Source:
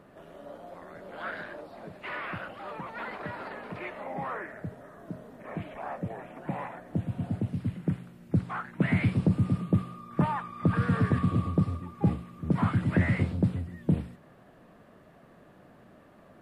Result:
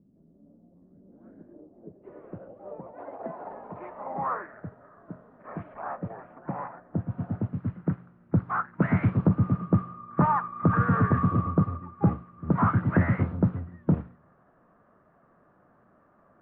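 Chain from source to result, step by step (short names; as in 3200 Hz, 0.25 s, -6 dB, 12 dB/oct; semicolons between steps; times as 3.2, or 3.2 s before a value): 2.93–3.45 frequency shift +62 Hz; 6.35–7.12 high shelf 3200 Hz -10.5 dB; in parallel at -3 dB: soft clip -23 dBFS, distortion -11 dB; on the sum: low-pass sweep 230 Hz -> 1300 Hz, 0.87–4.51; on a send at -23.5 dB: reverb RT60 0.75 s, pre-delay 6 ms; on the sum: upward expander 1.5:1, over -42 dBFS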